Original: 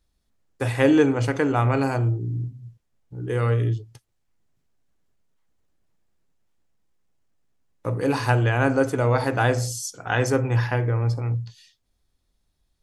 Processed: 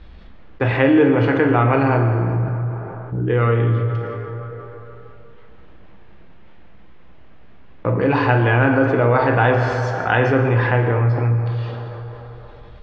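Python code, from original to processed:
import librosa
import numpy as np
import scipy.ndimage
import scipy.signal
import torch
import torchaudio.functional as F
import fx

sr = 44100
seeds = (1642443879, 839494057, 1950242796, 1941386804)

y = scipy.signal.sosfilt(scipy.signal.butter(4, 3100.0, 'lowpass', fs=sr, output='sos'), x)
y = fx.rev_fdn(y, sr, rt60_s=2.2, lf_ratio=0.75, hf_ratio=0.65, size_ms=91.0, drr_db=3.5)
y = fx.env_flatten(y, sr, amount_pct=50)
y = y * librosa.db_to_amplitude(1.0)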